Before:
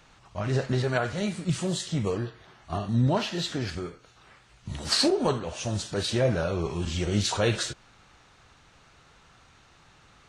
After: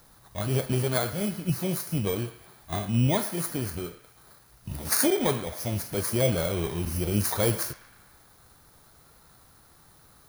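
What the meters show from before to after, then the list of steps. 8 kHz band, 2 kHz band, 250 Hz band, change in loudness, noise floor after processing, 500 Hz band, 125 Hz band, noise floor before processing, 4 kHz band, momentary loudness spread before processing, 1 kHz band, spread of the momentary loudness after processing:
+4.0 dB, -1.5 dB, 0.0 dB, +0.5 dB, -57 dBFS, -0.5 dB, 0.0 dB, -58 dBFS, -5.5 dB, 13 LU, -1.5 dB, 13 LU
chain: bit-reversed sample order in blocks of 16 samples; band-passed feedback delay 112 ms, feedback 64%, band-pass 1.8 kHz, level -13.5 dB; word length cut 10-bit, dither none

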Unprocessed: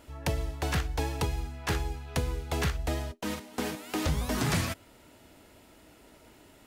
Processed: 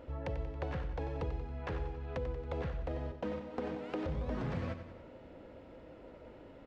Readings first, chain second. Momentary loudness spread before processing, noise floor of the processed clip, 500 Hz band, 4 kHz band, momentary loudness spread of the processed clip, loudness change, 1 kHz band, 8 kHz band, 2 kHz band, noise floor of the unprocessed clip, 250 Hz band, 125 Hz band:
6 LU, -54 dBFS, -3.0 dB, -19.0 dB, 15 LU, -7.5 dB, -8.5 dB, under -30 dB, -12.5 dB, -57 dBFS, -6.5 dB, -7.5 dB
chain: peaking EQ 520 Hz +14.5 dB 0.2 oct; peak limiter -21 dBFS, peak gain reduction 6 dB; compression, threshold -36 dBFS, peak gain reduction 10 dB; tape spacing loss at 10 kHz 38 dB; feedback delay 92 ms, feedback 53%, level -10 dB; trim +3 dB

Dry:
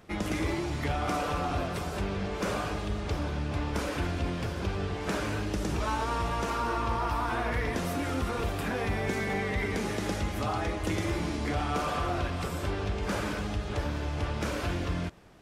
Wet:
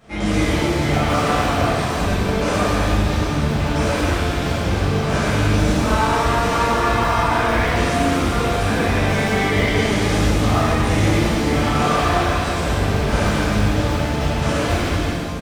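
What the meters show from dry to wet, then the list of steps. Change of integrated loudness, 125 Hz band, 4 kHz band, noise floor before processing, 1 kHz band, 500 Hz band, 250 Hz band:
+13.0 dB, +13.0 dB, +14.0 dB, -35 dBFS, +12.5 dB, +12.5 dB, +13.0 dB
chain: resampled via 22.05 kHz; crackling interface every 0.16 s, samples 512, repeat, from 0.92 s; pitch-shifted reverb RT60 1.8 s, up +7 st, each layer -8 dB, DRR -11.5 dB

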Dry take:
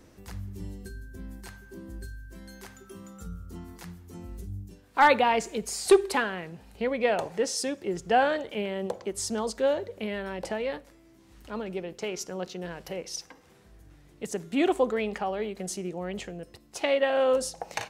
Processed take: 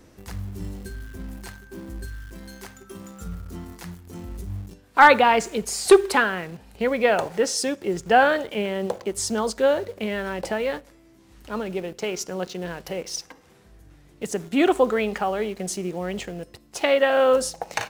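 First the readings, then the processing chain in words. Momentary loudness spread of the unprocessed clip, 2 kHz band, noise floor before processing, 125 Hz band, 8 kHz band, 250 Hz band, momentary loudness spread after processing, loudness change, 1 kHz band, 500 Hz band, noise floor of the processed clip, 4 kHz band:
20 LU, +7.5 dB, -57 dBFS, +5.0 dB, +5.0 dB, +5.0 dB, 21 LU, +6.0 dB, +6.0 dB, +5.5 dB, -54 dBFS, +5.5 dB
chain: dynamic bell 1.4 kHz, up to +5 dB, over -44 dBFS, Q 2.5; in parallel at -11 dB: bit crusher 7-bit; on the sum: trim +3 dB

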